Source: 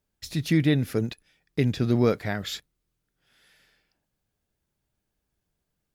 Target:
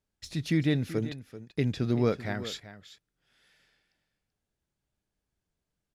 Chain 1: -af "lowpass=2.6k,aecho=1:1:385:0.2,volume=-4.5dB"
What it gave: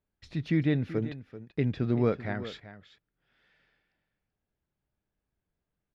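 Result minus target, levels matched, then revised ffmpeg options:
8000 Hz band -17.0 dB
-af "lowpass=9.9k,aecho=1:1:385:0.2,volume=-4.5dB"

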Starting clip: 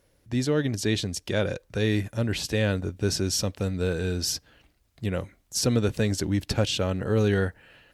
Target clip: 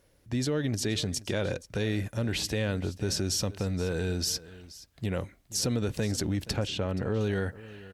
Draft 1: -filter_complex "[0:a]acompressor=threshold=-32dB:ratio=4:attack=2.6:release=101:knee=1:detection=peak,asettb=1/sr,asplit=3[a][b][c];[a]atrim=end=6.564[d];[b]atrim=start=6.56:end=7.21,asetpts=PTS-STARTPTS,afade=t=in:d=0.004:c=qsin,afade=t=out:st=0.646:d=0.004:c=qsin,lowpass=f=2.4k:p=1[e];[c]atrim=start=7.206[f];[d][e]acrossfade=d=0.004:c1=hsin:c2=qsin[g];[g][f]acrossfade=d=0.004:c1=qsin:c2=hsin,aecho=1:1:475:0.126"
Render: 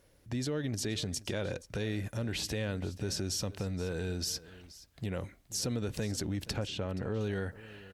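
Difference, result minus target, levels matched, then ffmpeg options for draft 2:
compressor: peak gain reduction +5 dB
-filter_complex "[0:a]acompressor=threshold=-25dB:ratio=4:attack=2.6:release=101:knee=1:detection=peak,asettb=1/sr,asplit=3[a][b][c];[a]atrim=end=6.564[d];[b]atrim=start=6.56:end=7.21,asetpts=PTS-STARTPTS,afade=t=in:d=0.004:c=qsin,afade=t=out:st=0.646:d=0.004:c=qsin,lowpass=f=2.4k:p=1[e];[c]atrim=start=7.206[f];[d][e]acrossfade=d=0.004:c1=hsin:c2=qsin[g];[g][f]acrossfade=d=0.004:c1=qsin:c2=hsin,aecho=1:1:475:0.126"

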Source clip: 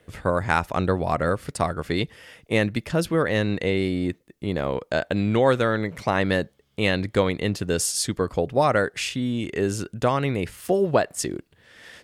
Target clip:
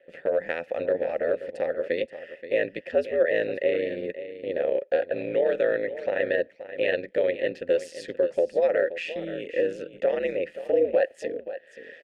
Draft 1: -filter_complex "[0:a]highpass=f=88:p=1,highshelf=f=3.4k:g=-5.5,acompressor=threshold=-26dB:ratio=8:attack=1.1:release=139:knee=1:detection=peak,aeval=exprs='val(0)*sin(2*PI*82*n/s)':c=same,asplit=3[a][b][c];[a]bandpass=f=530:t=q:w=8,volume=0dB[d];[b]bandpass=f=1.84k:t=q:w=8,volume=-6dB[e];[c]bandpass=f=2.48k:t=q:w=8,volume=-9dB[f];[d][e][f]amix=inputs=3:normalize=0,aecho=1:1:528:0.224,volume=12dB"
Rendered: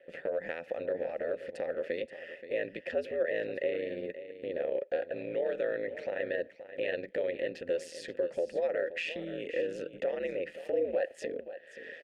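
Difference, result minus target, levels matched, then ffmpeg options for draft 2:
compressor: peak gain reduction +9 dB
-filter_complex "[0:a]highpass=f=88:p=1,highshelf=f=3.4k:g=-5.5,acompressor=threshold=-16dB:ratio=8:attack=1.1:release=139:knee=1:detection=peak,aeval=exprs='val(0)*sin(2*PI*82*n/s)':c=same,asplit=3[a][b][c];[a]bandpass=f=530:t=q:w=8,volume=0dB[d];[b]bandpass=f=1.84k:t=q:w=8,volume=-6dB[e];[c]bandpass=f=2.48k:t=q:w=8,volume=-9dB[f];[d][e][f]amix=inputs=3:normalize=0,aecho=1:1:528:0.224,volume=12dB"

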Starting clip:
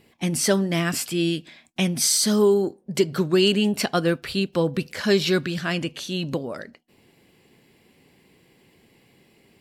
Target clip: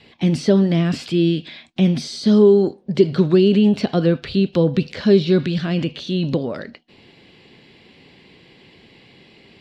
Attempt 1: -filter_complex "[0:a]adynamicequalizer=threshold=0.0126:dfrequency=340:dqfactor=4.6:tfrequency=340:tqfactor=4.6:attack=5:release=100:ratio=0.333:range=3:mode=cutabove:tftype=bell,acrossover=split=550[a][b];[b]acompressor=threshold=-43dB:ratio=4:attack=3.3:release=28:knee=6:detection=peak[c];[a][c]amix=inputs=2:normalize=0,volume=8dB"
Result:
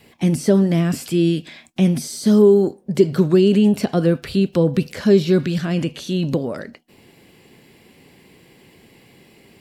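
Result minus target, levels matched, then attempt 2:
4000 Hz band -2.5 dB
-filter_complex "[0:a]adynamicequalizer=threshold=0.0126:dfrequency=340:dqfactor=4.6:tfrequency=340:tqfactor=4.6:attack=5:release=100:ratio=0.333:range=3:mode=cutabove:tftype=bell,lowpass=f=3.9k:t=q:w=2.1,acrossover=split=550[a][b];[b]acompressor=threshold=-43dB:ratio=4:attack=3.3:release=28:knee=6:detection=peak[c];[a][c]amix=inputs=2:normalize=0,volume=8dB"

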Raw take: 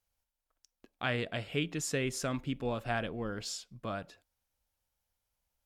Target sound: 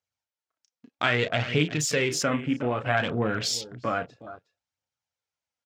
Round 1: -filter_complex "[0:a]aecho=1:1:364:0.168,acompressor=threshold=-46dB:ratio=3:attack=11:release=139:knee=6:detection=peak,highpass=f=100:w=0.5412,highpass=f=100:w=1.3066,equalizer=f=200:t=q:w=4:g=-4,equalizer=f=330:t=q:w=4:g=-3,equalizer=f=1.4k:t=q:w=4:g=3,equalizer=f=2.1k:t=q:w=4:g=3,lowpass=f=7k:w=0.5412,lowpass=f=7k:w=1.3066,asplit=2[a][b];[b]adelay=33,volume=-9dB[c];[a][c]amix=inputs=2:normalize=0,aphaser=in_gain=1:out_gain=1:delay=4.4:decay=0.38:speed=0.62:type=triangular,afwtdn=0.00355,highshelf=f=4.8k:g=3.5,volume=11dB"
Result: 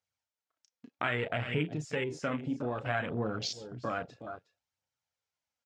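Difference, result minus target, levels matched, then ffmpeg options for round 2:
compressor: peak gain reduction +7.5 dB
-filter_complex "[0:a]aecho=1:1:364:0.168,acompressor=threshold=-34.5dB:ratio=3:attack=11:release=139:knee=6:detection=peak,highpass=f=100:w=0.5412,highpass=f=100:w=1.3066,equalizer=f=200:t=q:w=4:g=-4,equalizer=f=330:t=q:w=4:g=-3,equalizer=f=1.4k:t=q:w=4:g=3,equalizer=f=2.1k:t=q:w=4:g=3,lowpass=f=7k:w=0.5412,lowpass=f=7k:w=1.3066,asplit=2[a][b];[b]adelay=33,volume=-9dB[c];[a][c]amix=inputs=2:normalize=0,aphaser=in_gain=1:out_gain=1:delay=4.4:decay=0.38:speed=0.62:type=triangular,afwtdn=0.00355,highshelf=f=4.8k:g=3.5,volume=11dB"

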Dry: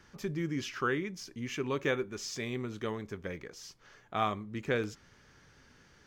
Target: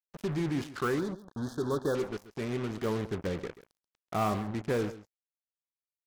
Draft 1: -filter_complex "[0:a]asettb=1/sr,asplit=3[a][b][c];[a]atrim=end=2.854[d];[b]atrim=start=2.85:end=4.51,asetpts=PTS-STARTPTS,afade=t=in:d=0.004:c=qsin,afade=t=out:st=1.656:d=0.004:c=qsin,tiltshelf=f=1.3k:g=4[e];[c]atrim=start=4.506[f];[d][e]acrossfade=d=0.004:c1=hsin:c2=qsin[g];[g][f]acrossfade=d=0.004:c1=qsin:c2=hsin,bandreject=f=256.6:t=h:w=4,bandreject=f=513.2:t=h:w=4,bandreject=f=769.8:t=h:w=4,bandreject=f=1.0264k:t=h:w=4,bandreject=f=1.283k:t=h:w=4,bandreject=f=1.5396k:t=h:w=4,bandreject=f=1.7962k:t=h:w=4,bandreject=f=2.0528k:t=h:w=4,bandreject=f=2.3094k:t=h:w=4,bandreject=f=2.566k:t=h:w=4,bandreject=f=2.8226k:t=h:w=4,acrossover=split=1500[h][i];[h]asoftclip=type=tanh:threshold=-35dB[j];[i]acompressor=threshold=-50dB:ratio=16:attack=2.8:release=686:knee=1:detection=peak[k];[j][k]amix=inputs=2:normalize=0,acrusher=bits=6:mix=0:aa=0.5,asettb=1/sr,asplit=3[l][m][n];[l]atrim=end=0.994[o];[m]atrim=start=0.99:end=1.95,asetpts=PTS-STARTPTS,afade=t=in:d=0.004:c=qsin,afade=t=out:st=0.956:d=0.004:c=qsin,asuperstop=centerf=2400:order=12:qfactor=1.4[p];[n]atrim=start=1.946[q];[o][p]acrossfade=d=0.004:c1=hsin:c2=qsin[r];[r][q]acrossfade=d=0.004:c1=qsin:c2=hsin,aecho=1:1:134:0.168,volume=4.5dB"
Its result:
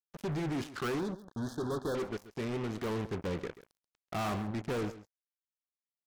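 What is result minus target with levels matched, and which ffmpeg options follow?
soft clip: distortion +8 dB
-filter_complex "[0:a]asettb=1/sr,asplit=3[a][b][c];[a]atrim=end=2.854[d];[b]atrim=start=2.85:end=4.51,asetpts=PTS-STARTPTS,afade=t=in:d=0.004:c=qsin,afade=t=out:st=1.656:d=0.004:c=qsin,tiltshelf=f=1.3k:g=4[e];[c]atrim=start=4.506[f];[d][e]acrossfade=d=0.004:c1=hsin:c2=qsin[g];[g][f]acrossfade=d=0.004:c1=qsin:c2=hsin,bandreject=f=256.6:t=h:w=4,bandreject=f=513.2:t=h:w=4,bandreject=f=769.8:t=h:w=4,bandreject=f=1.0264k:t=h:w=4,bandreject=f=1.283k:t=h:w=4,bandreject=f=1.5396k:t=h:w=4,bandreject=f=1.7962k:t=h:w=4,bandreject=f=2.0528k:t=h:w=4,bandreject=f=2.3094k:t=h:w=4,bandreject=f=2.566k:t=h:w=4,bandreject=f=2.8226k:t=h:w=4,acrossover=split=1500[h][i];[h]asoftclip=type=tanh:threshold=-27dB[j];[i]acompressor=threshold=-50dB:ratio=16:attack=2.8:release=686:knee=1:detection=peak[k];[j][k]amix=inputs=2:normalize=0,acrusher=bits=6:mix=0:aa=0.5,asettb=1/sr,asplit=3[l][m][n];[l]atrim=end=0.994[o];[m]atrim=start=0.99:end=1.95,asetpts=PTS-STARTPTS,afade=t=in:d=0.004:c=qsin,afade=t=out:st=0.956:d=0.004:c=qsin,asuperstop=centerf=2400:order=12:qfactor=1.4[p];[n]atrim=start=1.946[q];[o][p]acrossfade=d=0.004:c1=hsin:c2=qsin[r];[r][q]acrossfade=d=0.004:c1=qsin:c2=hsin,aecho=1:1:134:0.168,volume=4.5dB"

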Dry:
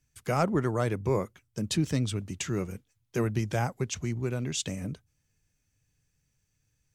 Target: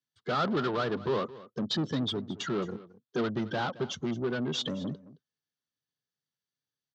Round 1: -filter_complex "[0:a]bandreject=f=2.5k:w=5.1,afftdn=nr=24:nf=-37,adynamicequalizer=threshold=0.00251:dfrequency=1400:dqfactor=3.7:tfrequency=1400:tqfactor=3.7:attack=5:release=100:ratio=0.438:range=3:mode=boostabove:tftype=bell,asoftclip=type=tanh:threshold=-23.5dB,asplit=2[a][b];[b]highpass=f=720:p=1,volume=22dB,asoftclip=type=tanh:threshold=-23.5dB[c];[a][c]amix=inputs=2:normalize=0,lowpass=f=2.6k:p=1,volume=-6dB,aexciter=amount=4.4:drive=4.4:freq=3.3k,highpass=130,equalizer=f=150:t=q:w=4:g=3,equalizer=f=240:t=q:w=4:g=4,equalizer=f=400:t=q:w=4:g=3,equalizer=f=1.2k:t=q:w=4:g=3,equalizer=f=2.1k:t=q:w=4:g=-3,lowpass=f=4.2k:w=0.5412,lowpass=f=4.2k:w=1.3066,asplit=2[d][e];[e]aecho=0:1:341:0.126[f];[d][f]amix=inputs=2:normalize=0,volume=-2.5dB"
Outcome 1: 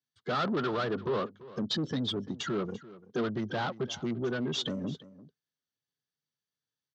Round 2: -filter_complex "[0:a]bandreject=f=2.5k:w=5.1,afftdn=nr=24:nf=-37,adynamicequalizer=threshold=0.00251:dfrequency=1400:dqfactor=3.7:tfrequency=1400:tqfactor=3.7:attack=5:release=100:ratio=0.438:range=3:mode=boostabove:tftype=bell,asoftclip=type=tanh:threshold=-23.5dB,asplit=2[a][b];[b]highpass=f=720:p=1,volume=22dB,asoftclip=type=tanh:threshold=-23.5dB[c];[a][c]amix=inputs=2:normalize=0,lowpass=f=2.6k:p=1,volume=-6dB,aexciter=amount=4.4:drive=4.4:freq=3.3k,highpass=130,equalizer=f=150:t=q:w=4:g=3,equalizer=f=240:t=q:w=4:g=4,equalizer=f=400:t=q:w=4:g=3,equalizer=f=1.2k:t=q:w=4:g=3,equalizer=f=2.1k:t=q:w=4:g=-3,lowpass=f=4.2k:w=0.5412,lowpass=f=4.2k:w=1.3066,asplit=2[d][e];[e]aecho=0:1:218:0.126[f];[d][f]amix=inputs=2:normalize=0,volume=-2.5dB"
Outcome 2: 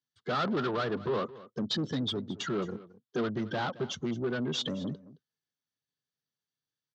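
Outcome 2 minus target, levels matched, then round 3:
soft clip: distortion +16 dB
-filter_complex "[0:a]bandreject=f=2.5k:w=5.1,afftdn=nr=24:nf=-37,adynamicequalizer=threshold=0.00251:dfrequency=1400:dqfactor=3.7:tfrequency=1400:tqfactor=3.7:attack=5:release=100:ratio=0.438:range=3:mode=boostabove:tftype=bell,asoftclip=type=tanh:threshold=-11.5dB,asplit=2[a][b];[b]highpass=f=720:p=1,volume=22dB,asoftclip=type=tanh:threshold=-23.5dB[c];[a][c]amix=inputs=2:normalize=0,lowpass=f=2.6k:p=1,volume=-6dB,aexciter=amount=4.4:drive=4.4:freq=3.3k,highpass=130,equalizer=f=150:t=q:w=4:g=3,equalizer=f=240:t=q:w=4:g=4,equalizer=f=400:t=q:w=4:g=3,equalizer=f=1.2k:t=q:w=4:g=3,equalizer=f=2.1k:t=q:w=4:g=-3,lowpass=f=4.2k:w=0.5412,lowpass=f=4.2k:w=1.3066,asplit=2[d][e];[e]aecho=0:1:218:0.126[f];[d][f]amix=inputs=2:normalize=0,volume=-2.5dB"

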